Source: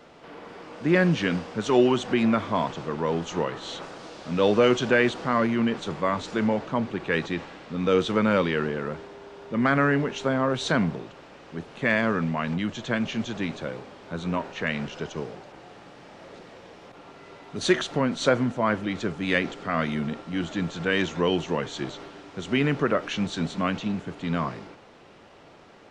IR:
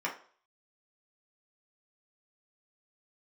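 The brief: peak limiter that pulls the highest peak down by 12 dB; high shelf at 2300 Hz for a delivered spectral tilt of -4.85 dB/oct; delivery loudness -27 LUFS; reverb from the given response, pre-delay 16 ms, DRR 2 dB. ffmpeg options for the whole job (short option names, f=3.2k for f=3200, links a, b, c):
-filter_complex "[0:a]highshelf=f=2.3k:g=5.5,alimiter=limit=-17.5dB:level=0:latency=1,asplit=2[a][b];[1:a]atrim=start_sample=2205,adelay=16[c];[b][c]afir=irnorm=-1:irlink=0,volume=-8.5dB[d];[a][d]amix=inputs=2:normalize=0,volume=0.5dB"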